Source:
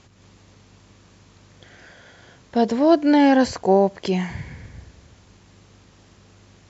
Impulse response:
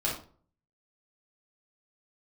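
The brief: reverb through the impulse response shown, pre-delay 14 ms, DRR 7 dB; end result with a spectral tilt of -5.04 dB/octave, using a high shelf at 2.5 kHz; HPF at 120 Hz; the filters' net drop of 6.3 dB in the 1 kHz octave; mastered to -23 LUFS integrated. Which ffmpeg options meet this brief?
-filter_complex "[0:a]highpass=120,equalizer=f=1000:t=o:g=-8.5,highshelf=f=2500:g=-6,asplit=2[s0][s1];[1:a]atrim=start_sample=2205,adelay=14[s2];[s1][s2]afir=irnorm=-1:irlink=0,volume=0.188[s3];[s0][s3]amix=inputs=2:normalize=0,volume=0.631"

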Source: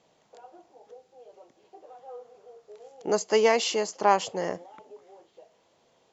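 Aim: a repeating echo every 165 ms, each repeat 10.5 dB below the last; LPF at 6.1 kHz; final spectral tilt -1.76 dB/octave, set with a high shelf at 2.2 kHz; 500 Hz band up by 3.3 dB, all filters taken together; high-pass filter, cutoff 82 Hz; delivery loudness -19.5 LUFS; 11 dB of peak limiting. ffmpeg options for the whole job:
-af "highpass=82,lowpass=6100,equalizer=f=500:t=o:g=3.5,highshelf=f=2200:g=8,alimiter=limit=0.168:level=0:latency=1,aecho=1:1:165|330|495:0.299|0.0896|0.0269,volume=2.24"

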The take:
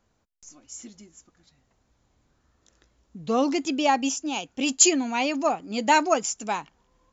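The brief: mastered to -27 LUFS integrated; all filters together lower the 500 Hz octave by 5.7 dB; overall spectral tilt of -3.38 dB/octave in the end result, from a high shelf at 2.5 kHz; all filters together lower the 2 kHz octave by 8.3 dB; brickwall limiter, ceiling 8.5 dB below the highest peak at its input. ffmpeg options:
-af "equalizer=f=500:t=o:g=-7,equalizer=f=2000:t=o:g=-6.5,highshelf=f=2500:g=-8.5,volume=1.58,alimiter=limit=0.15:level=0:latency=1"

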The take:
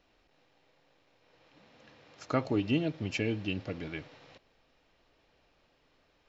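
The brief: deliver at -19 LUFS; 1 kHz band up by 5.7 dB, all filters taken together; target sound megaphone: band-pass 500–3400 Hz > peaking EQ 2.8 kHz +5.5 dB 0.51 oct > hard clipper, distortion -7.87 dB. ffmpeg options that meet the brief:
-af "highpass=500,lowpass=3400,equalizer=f=1000:t=o:g=8,equalizer=f=2800:t=o:w=0.51:g=5.5,asoftclip=type=hard:threshold=0.0335,volume=8.41"

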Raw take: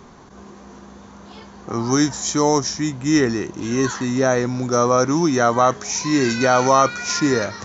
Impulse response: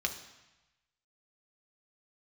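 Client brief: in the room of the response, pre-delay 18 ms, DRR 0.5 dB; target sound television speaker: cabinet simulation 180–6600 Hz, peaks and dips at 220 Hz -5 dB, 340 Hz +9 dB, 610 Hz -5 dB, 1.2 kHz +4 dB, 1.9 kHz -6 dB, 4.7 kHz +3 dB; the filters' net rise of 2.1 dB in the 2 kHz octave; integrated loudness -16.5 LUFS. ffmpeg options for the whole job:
-filter_complex "[0:a]equalizer=f=2000:t=o:g=5.5,asplit=2[s0][s1];[1:a]atrim=start_sample=2205,adelay=18[s2];[s1][s2]afir=irnorm=-1:irlink=0,volume=0.562[s3];[s0][s3]amix=inputs=2:normalize=0,highpass=f=180:w=0.5412,highpass=f=180:w=1.3066,equalizer=f=220:t=q:w=4:g=-5,equalizer=f=340:t=q:w=4:g=9,equalizer=f=610:t=q:w=4:g=-5,equalizer=f=1200:t=q:w=4:g=4,equalizer=f=1900:t=q:w=4:g=-6,equalizer=f=4700:t=q:w=4:g=3,lowpass=f=6600:w=0.5412,lowpass=f=6600:w=1.3066,volume=0.841"

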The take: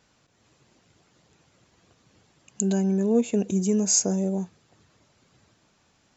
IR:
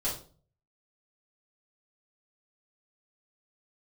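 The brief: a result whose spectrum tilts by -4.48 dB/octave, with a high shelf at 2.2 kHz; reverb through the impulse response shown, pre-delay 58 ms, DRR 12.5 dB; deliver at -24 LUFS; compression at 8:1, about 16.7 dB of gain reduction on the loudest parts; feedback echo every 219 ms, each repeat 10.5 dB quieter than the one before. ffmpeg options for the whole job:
-filter_complex "[0:a]highshelf=f=2200:g=7,acompressor=threshold=0.0355:ratio=8,aecho=1:1:219|438|657:0.299|0.0896|0.0269,asplit=2[s0][s1];[1:a]atrim=start_sample=2205,adelay=58[s2];[s1][s2]afir=irnorm=-1:irlink=0,volume=0.126[s3];[s0][s3]amix=inputs=2:normalize=0,volume=2.66"

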